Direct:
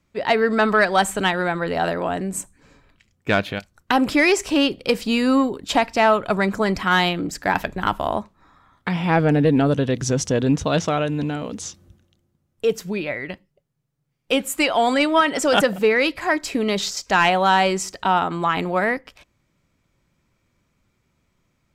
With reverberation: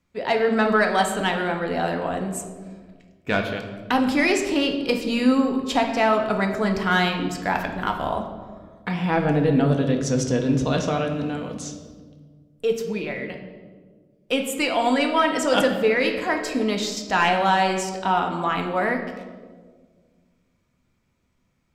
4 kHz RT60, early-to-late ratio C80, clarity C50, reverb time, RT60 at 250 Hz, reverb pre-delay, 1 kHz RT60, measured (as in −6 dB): 0.95 s, 9.0 dB, 6.5 dB, 1.6 s, 2.1 s, 4 ms, 1.3 s